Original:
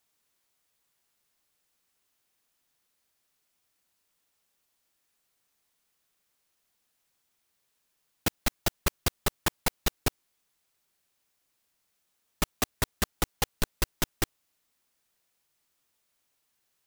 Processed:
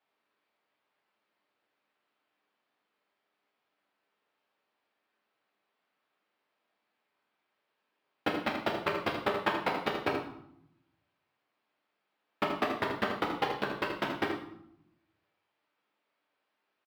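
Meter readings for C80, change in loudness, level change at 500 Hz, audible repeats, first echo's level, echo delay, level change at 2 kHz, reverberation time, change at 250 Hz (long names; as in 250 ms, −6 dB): 7.5 dB, −1.0 dB, +5.0 dB, 1, −8.0 dB, 79 ms, +2.0 dB, 0.75 s, +2.0 dB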